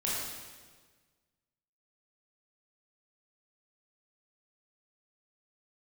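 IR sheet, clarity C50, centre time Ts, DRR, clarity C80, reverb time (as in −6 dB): −1.5 dB, 96 ms, −7.0 dB, 1.0 dB, 1.5 s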